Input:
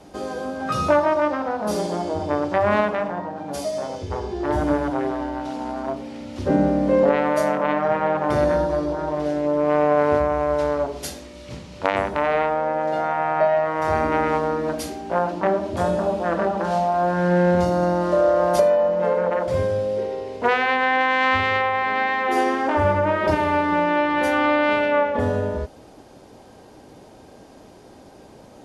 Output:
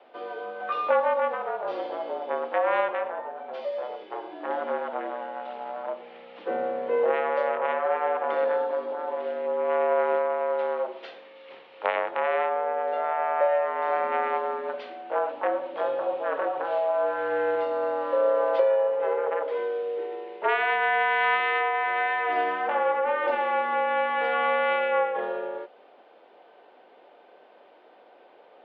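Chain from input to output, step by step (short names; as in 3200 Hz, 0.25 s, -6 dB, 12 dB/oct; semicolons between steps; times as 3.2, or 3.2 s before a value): mistuned SSB -52 Hz 510–3400 Hz; gain -3.5 dB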